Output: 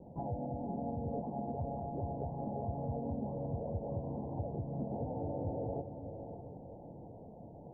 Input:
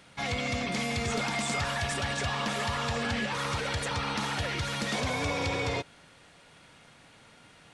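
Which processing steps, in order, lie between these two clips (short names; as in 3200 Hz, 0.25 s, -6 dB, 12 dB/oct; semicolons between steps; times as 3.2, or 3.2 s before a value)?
steep low-pass 760 Hz 96 dB/oct; compressor 3:1, threshold -49 dBFS, peak gain reduction 15.5 dB; harmoniser +3 st -4 dB; on a send: diffused feedback echo 0.597 s, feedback 46%, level -8.5 dB; on the sum: gain +6.5 dB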